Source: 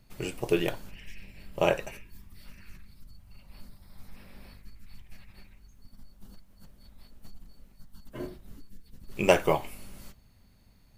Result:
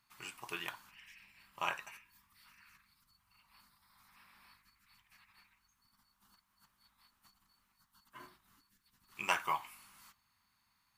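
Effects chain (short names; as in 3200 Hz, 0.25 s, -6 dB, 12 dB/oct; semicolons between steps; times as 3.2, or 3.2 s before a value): HPF 160 Hz 6 dB/oct; resonant low shelf 750 Hz -12 dB, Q 3; gain -7.5 dB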